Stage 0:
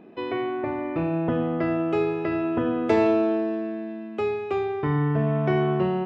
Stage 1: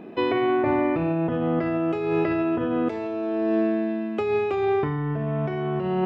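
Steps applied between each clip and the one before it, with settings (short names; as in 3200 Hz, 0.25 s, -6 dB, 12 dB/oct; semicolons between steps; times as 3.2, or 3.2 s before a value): negative-ratio compressor -28 dBFS, ratio -1; gain +4 dB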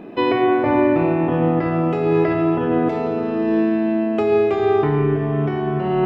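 shoebox room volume 220 m³, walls hard, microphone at 0.32 m; gain +4 dB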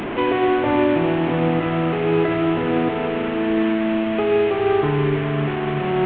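delta modulation 16 kbps, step -19 dBFS; gain -1.5 dB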